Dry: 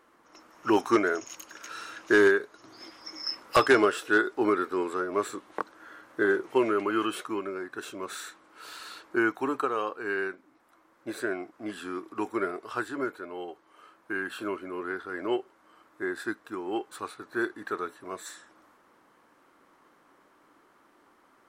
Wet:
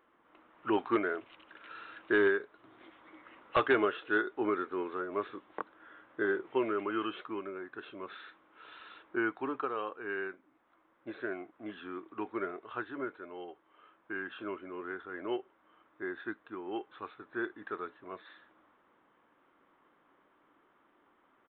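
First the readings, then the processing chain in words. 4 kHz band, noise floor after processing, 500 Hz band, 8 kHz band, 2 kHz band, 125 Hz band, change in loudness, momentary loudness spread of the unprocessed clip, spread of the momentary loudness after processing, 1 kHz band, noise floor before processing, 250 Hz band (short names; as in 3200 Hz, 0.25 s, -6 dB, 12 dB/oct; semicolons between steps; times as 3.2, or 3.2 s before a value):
-9.5 dB, -70 dBFS, -6.5 dB, under -35 dB, -6.5 dB, -6.5 dB, -6.5 dB, 18 LU, 18 LU, -6.5 dB, -63 dBFS, -6.5 dB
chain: downsampling 8000 Hz; gain -6.5 dB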